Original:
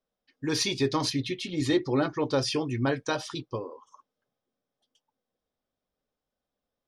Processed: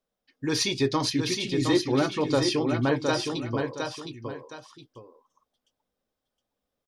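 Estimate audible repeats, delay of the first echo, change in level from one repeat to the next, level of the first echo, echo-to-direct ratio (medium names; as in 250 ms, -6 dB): 2, 715 ms, -10.0 dB, -5.0 dB, -4.5 dB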